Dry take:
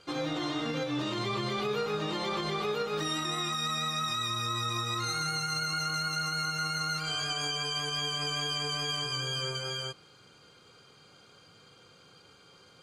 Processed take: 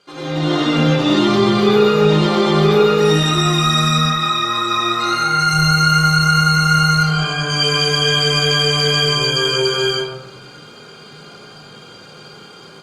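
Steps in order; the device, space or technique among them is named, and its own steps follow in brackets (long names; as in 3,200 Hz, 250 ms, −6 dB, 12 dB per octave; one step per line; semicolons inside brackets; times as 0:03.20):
0:03.98–0:05.39: bass and treble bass −14 dB, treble −9 dB
rectangular room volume 700 cubic metres, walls furnished, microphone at 1.3 metres
0:06.94–0:07.50: high-shelf EQ 2,900 Hz −10.5 dB
far-field microphone of a smart speaker (convolution reverb RT60 0.75 s, pre-delay 83 ms, DRR −5.5 dB; high-pass filter 140 Hz 12 dB per octave; automatic gain control gain up to 10.5 dB; Opus 48 kbit/s 48,000 Hz)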